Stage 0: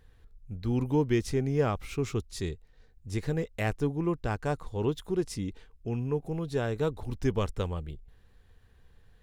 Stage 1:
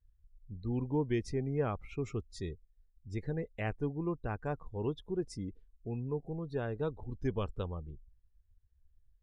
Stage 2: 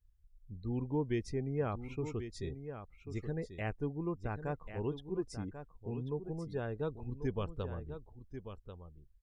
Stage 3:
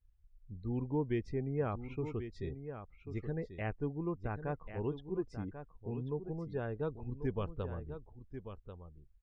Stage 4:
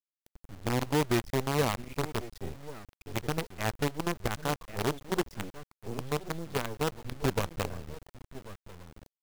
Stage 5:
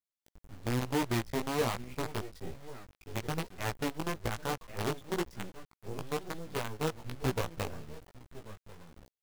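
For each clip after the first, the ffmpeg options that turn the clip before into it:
ffmpeg -i in.wav -af "afftdn=noise_reduction=25:noise_floor=-43,volume=-6dB" out.wav
ffmpeg -i in.wav -af "aecho=1:1:1090:0.316,volume=-2dB" out.wav
ffmpeg -i in.wav -af "lowpass=2900" out.wav
ffmpeg -i in.wav -af "acrusher=bits=6:dc=4:mix=0:aa=0.000001,volume=5.5dB" out.wav
ffmpeg -i in.wav -af "flanger=delay=16:depth=3.2:speed=1.1" out.wav

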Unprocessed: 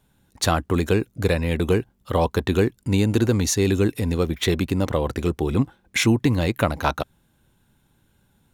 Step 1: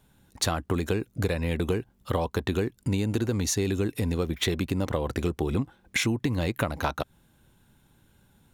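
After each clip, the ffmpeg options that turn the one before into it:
ffmpeg -i in.wav -af "acompressor=threshold=-25dB:ratio=6,volume=1.5dB" out.wav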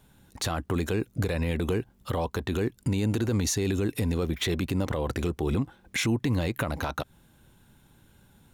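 ffmpeg -i in.wav -af "alimiter=limit=-21dB:level=0:latency=1:release=31,volume=3dB" out.wav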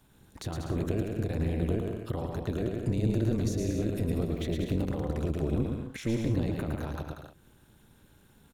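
ffmpeg -i in.wav -filter_complex "[0:a]aecho=1:1:110|187|240.9|278.6|305:0.631|0.398|0.251|0.158|0.1,acrossover=split=490[link_01][link_02];[link_02]acompressor=threshold=-48dB:ratio=2[link_03];[link_01][link_03]amix=inputs=2:normalize=0,tremolo=f=230:d=0.75" out.wav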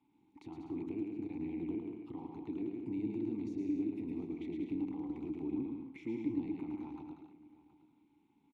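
ffmpeg -i in.wav -filter_complex "[0:a]asplit=3[link_01][link_02][link_03];[link_01]bandpass=frequency=300:width_type=q:width=8,volume=0dB[link_04];[link_02]bandpass=frequency=870:width_type=q:width=8,volume=-6dB[link_05];[link_03]bandpass=frequency=2240:width_type=q:width=8,volume=-9dB[link_06];[link_04][link_05][link_06]amix=inputs=3:normalize=0,aecho=1:1:720:0.119,volume=1.5dB" out.wav

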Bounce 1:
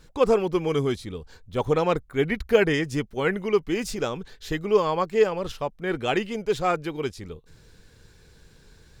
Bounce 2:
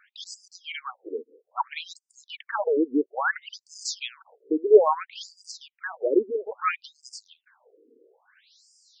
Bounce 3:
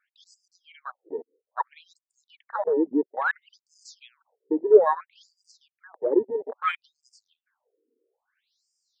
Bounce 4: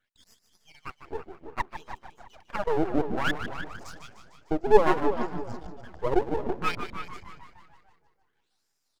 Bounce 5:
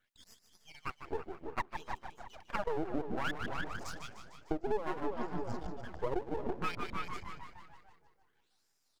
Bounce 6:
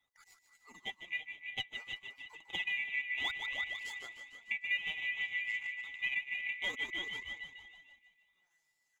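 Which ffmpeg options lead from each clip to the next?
ffmpeg -i in.wav -af "afftfilt=real='re*between(b*sr/1024,350*pow(6700/350,0.5+0.5*sin(2*PI*0.6*pts/sr))/1.41,350*pow(6700/350,0.5+0.5*sin(2*PI*0.6*pts/sr))*1.41)':imag='im*between(b*sr/1024,350*pow(6700/350,0.5+0.5*sin(2*PI*0.6*pts/sr))/1.41,350*pow(6700/350,0.5+0.5*sin(2*PI*0.6*pts/sr))*1.41)':win_size=1024:overlap=0.75,volume=6dB" out.wav
ffmpeg -i in.wav -af "afwtdn=0.0355" out.wav
ffmpeg -i in.wav -filter_complex "[0:a]asplit=2[link_01][link_02];[link_02]asplit=8[link_03][link_04][link_05][link_06][link_07][link_08][link_09][link_10];[link_03]adelay=151,afreqshift=-63,volume=-10dB[link_11];[link_04]adelay=302,afreqshift=-126,volume=-13.9dB[link_12];[link_05]adelay=453,afreqshift=-189,volume=-17.8dB[link_13];[link_06]adelay=604,afreqshift=-252,volume=-21.6dB[link_14];[link_07]adelay=755,afreqshift=-315,volume=-25.5dB[link_15];[link_08]adelay=906,afreqshift=-378,volume=-29.4dB[link_16];[link_09]adelay=1057,afreqshift=-441,volume=-33.3dB[link_17];[link_10]adelay=1208,afreqshift=-504,volume=-37.1dB[link_18];[link_11][link_12][link_13][link_14][link_15][link_16][link_17][link_18]amix=inputs=8:normalize=0[link_19];[link_01][link_19]amix=inputs=2:normalize=0,aeval=exprs='max(val(0),0)':channel_layout=same,asplit=2[link_20][link_21];[link_21]adelay=331,lowpass=frequency=2200:poles=1,volume=-10dB,asplit=2[link_22][link_23];[link_23]adelay=331,lowpass=frequency=2200:poles=1,volume=0.26,asplit=2[link_24][link_25];[link_25]adelay=331,lowpass=frequency=2200:poles=1,volume=0.26[link_26];[link_22][link_24][link_26]amix=inputs=3:normalize=0[link_27];[link_20][link_27]amix=inputs=2:normalize=0,volume=1.5dB" out.wav
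ffmpeg -i in.wav -af "acompressor=threshold=-30dB:ratio=6" out.wav
ffmpeg -i in.wav -af "afftfilt=real='real(if(lt(b,920),b+92*(1-2*mod(floor(b/92),2)),b),0)':imag='imag(if(lt(b,920),b+92*(1-2*mod(floor(b/92),2)),b),0)':win_size=2048:overlap=0.75,equalizer=frequency=860:width_type=o:width=0.34:gain=9.5,flanger=delay=1.3:depth=7.4:regen=44:speed=0.27:shape=triangular" out.wav

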